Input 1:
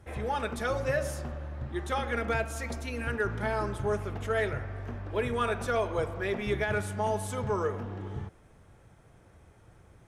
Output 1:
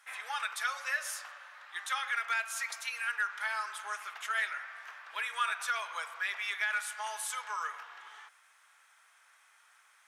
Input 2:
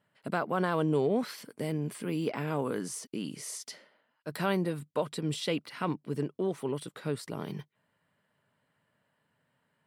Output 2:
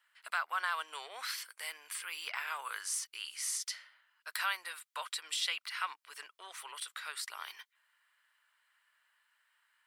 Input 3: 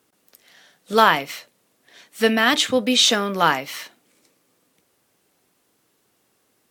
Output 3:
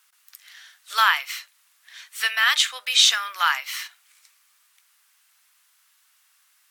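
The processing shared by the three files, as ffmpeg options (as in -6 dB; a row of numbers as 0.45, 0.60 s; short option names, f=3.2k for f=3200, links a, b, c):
-filter_complex "[0:a]highpass=f=1.2k:w=0.5412,highpass=f=1.2k:w=1.3066,asplit=2[a][b];[b]acompressor=threshold=-40dB:ratio=6,volume=-1dB[c];[a][c]amix=inputs=2:normalize=0"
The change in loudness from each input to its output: -3.0, -5.0, -2.0 LU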